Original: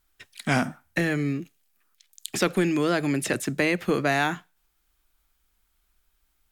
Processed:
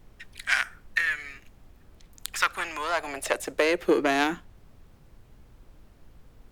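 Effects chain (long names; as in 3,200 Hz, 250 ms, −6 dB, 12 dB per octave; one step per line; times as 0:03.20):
harmonic generator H 2 −9 dB, 3 −17 dB, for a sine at −8.5 dBFS
high-pass filter sweep 1,700 Hz → 73 Hz, 0:02.10–0:05.82
background noise brown −51 dBFS
level +1 dB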